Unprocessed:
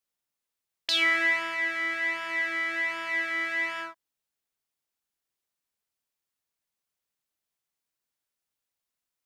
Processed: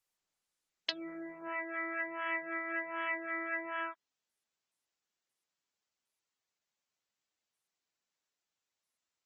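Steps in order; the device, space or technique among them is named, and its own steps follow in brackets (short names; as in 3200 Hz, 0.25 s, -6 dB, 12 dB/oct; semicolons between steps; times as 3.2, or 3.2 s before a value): treble ducked by the level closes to 340 Hz, closed at -23 dBFS; noise-suppressed video call (HPF 150 Hz 6 dB/oct; spectral gate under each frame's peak -25 dB strong; Opus 20 kbps 48000 Hz)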